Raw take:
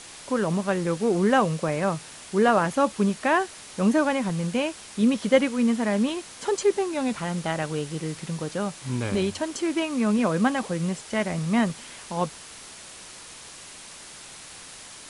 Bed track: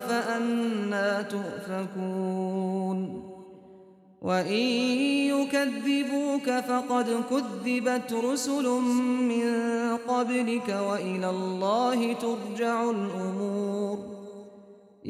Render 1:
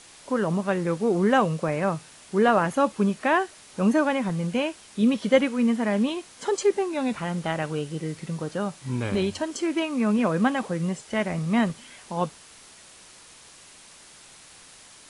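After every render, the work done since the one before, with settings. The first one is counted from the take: noise print and reduce 6 dB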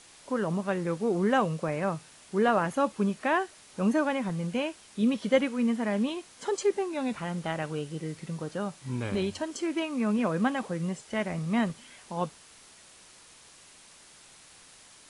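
trim -4.5 dB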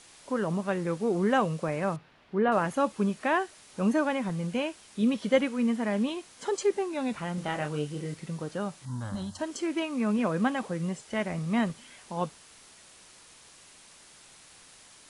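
1.96–2.52 s: distance through air 340 m; 7.35–8.14 s: doubling 27 ms -5 dB; 8.85–9.39 s: static phaser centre 1 kHz, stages 4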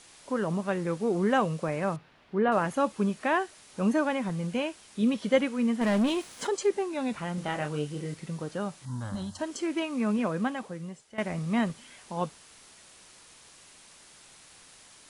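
5.81–6.47 s: waveshaping leveller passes 2; 10.08–11.18 s: fade out linear, to -15.5 dB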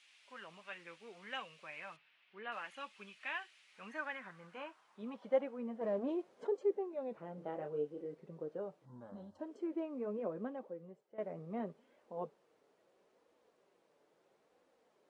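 flange 0.75 Hz, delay 3.3 ms, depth 3.8 ms, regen -37%; band-pass sweep 2.6 kHz -> 470 Hz, 3.56–5.97 s

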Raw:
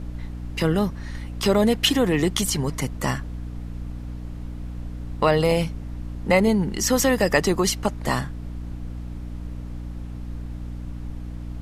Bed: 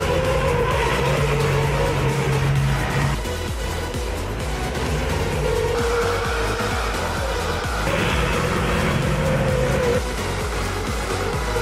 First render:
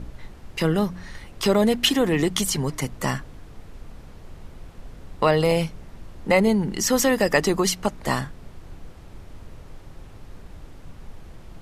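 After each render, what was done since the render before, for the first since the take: de-hum 60 Hz, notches 5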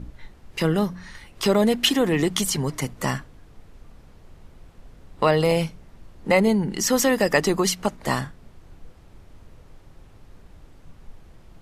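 noise print and reduce 6 dB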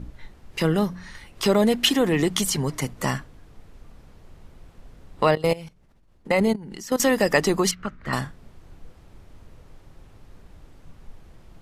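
5.35–7.00 s: level held to a coarse grid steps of 19 dB; 7.71–8.13 s: FFT filter 100 Hz 0 dB, 900 Hz -14 dB, 1.3 kHz +3 dB, 9.4 kHz -23 dB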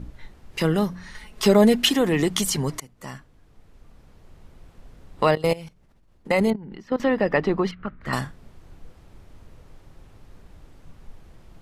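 1.15–1.82 s: comb 4.7 ms; 2.80–5.34 s: fade in equal-power, from -21.5 dB; 6.50–8.01 s: distance through air 370 m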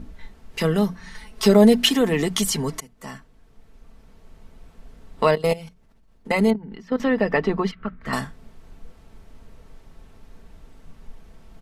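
hum notches 60/120/180 Hz; comb 4.5 ms, depth 44%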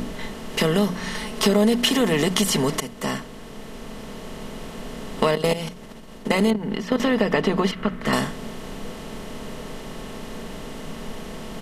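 spectral levelling over time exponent 0.6; compression 2.5:1, threshold -17 dBFS, peak gain reduction 6.5 dB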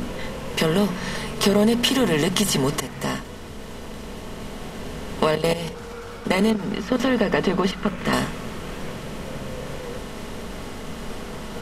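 add bed -16.5 dB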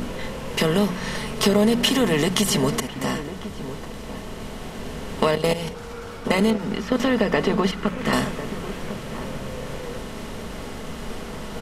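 echo from a far wall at 180 m, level -12 dB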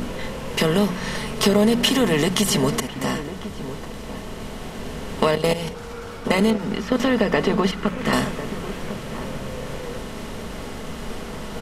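trim +1 dB; peak limiter -3 dBFS, peak gain reduction 1.5 dB

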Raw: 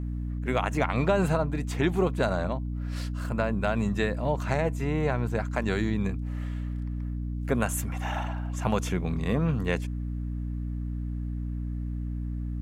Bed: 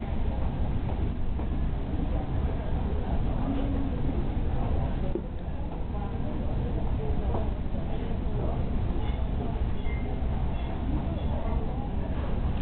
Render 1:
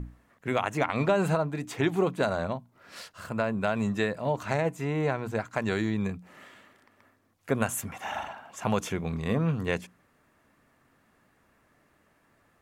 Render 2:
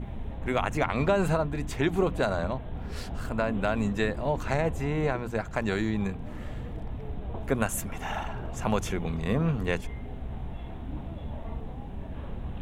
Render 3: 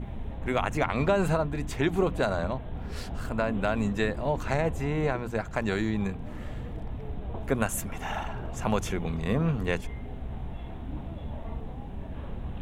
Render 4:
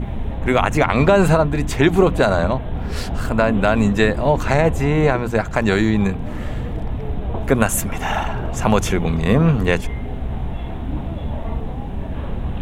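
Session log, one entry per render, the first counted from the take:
hum notches 60/120/180/240/300 Hz
add bed -7.5 dB
no audible change
trim +11.5 dB; peak limiter -2 dBFS, peak gain reduction 3 dB

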